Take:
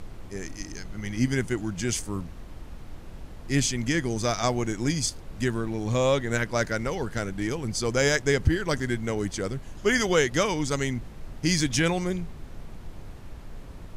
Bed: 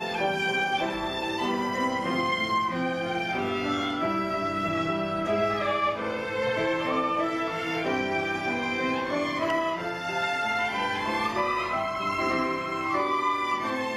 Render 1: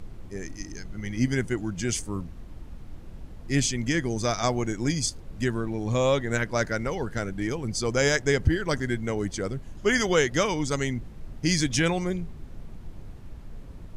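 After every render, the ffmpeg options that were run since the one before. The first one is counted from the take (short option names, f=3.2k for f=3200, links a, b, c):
-af "afftdn=nr=6:nf=-43"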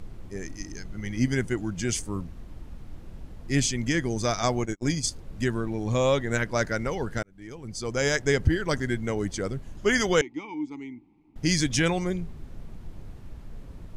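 -filter_complex "[0:a]asplit=3[a][b][c];[a]afade=t=out:st=4.6:d=0.02[d];[b]agate=range=-41dB:threshold=-29dB:ratio=16:release=100:detection=peak,afade=t=in:st=4.6:d=0.02,afade=t=out:st=5.04:d=0.02[e];[c]afade=t=in:st=5.04:d=0.02[f];[d][e][f]amix=inputs=3:normalize=0,asettb=1/sr,asplit=3[g][h][i];[g]atrim=end=10.214[j];[h]atrim=start=10.21:end=11.36,asetpts=PTS-STARTPTS,afade=t=in:d=0.004:c=qsin,afade=t=out:st=1.146:d=0.004:c=qsin,asplit=3[k][l][m];[k]bandpass=f=300:t=q:w=8,volume=0dB[n];[l]bandpass=f=870:t=q:w=8,volume=-6dB[o];[m]bandpass=f=2.24k:t=q:w=8,volume=-9dB[p];[n][o][p]amix=inputs=3:normalize=0[q];[i]atrim=start=11.356[r];[j][q]acrossfade=d=0.004:c1=hsin:c2=qsin[s];[s][r]acrossfade=d=0.004:c1=qsin:c2=hsin,asplit=2[t][u];[t]atrim=end=7.23,asetpts=PTS-STARTPTS,afade=t=out:st=7.226:d=0.004:c=hsin[v];[u]atrim=start=7.23,asetpts=PTS-STARTPTS,afade=t=in:d=1.08[w];[v][w]concat=n=2:v=0:a=1"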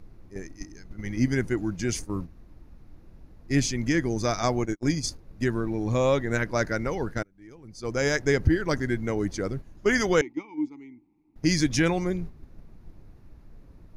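-af "agate=range=-8dB:threshold=-33dB:ratio=16:detection=peak,equalizer=f=315:t=o:w=0.33:g=4,equalizer=f=3.15k:t=o:w=0.33:g=-7,equalizer=f=8k:t=o:w=0.33:g=-10"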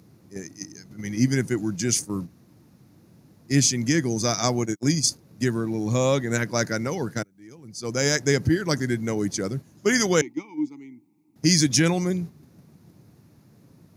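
-af "highpass=f=120:w=0.5412,highpass=f=120:w=1.3066,bass=f=250:g=6,treble=f=4k:g=12"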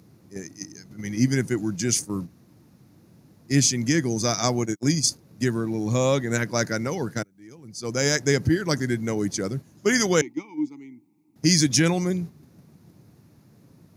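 -af anull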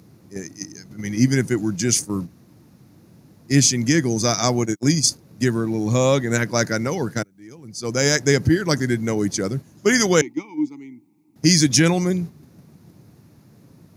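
-af "volume=4dB,alimiter=limit=-2dB:level=0:latency=1"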